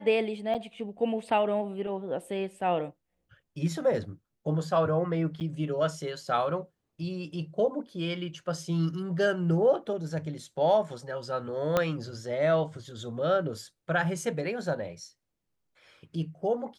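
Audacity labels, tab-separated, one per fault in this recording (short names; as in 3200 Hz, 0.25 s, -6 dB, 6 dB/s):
0.540000	0.550000	gap 8.1 ms
5.400000	5.410000	gap 8.7 ms
11.770000	11.770000	pop -11 dBFS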